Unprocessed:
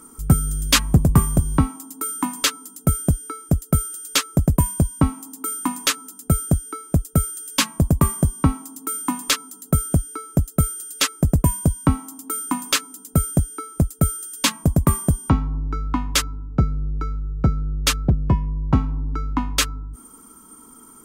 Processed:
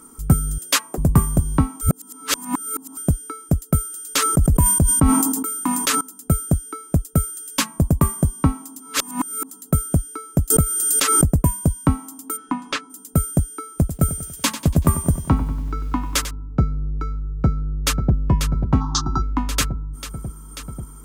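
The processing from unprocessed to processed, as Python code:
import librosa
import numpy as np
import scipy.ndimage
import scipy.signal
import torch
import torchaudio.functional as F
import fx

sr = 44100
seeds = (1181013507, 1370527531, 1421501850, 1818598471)

y = fx.highpass(x, sr, hz=350.0, slope=24, at=(0.58, 0.98))
y = fx.sustainer(y, sr, db_per_s=34.0, at=(3.93, 6.01))
y = fx.pre_swell(y, sr, db_per_s=24.0, at=(10.5, 11.3))
y = fx.lowpass(y, sr, hz=fx.line((12.36, 2600.0), (12.89, 4400.0)), slope=12, at=(12.36, 12.89), fade=0.02)
y = fx.echo_crushed(y, sr, ms=95, feedback_pct=55, bits=7, wet_db=-11.5, at=(13.69, 16.31))
y = fx.echo_throw(y, sr, start_s=17.36, length_s=0.78, ms=540, feedback_pct=80, wet_db=-7.5)
y = fx.curve_eq(y, sr, hz=(240.0, 360.0, 530.0, 770.0, 1200.0, 2300.0, 3700.0, 6100.0, 12000.0), db=(0, 9, -30, 13, 13, -18, 9, 14, -29), at=(18.8, 19.21), fade=0.02)
y = fx.edit(y, sr, fx.reverse_span(start_s=1.81, length_s=1.16),
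    fx.reverse_span(start_s=8.8, length_s=0.7), tone=tone)
y = fx.dynamic_eq(y, sr, hz=3400.0, q=0.83, threshold_db=-38.0, ratio=4.0, max_db=-4)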